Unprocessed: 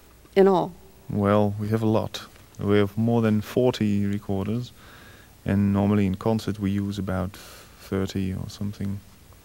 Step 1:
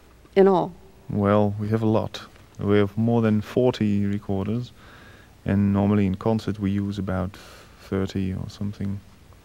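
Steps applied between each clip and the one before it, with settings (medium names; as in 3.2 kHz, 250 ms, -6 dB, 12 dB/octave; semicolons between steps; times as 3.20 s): low-pass 4 kHz 6 dB/octave; trim +1 dB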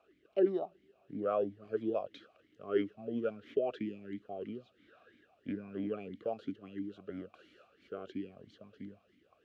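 talking filter a-i 3 Hz; trim -3.5 dB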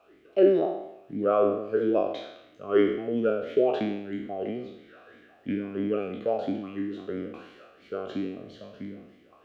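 spectral sustain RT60 0.81 s; trim +7 dB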